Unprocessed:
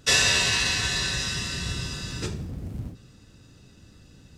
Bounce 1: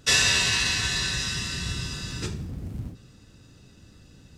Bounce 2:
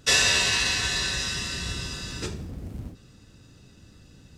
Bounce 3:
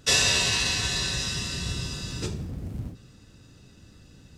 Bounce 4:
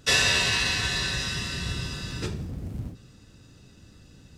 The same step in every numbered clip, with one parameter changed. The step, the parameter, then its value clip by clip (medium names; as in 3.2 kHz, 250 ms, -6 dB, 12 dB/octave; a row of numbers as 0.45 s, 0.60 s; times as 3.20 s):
dynamic bell, frequency: 570 Hz, 130 Hz, 1.7 kHz, 7 kHz